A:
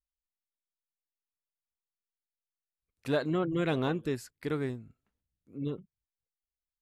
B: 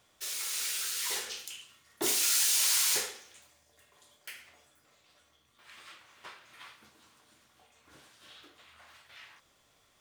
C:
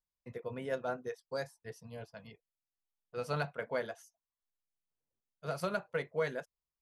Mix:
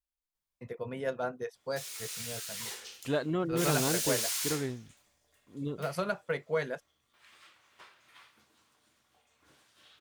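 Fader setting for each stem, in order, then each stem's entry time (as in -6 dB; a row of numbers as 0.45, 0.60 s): -1.5, -6.5, +2.5 dB; 0.00, 1.55, 0.35 s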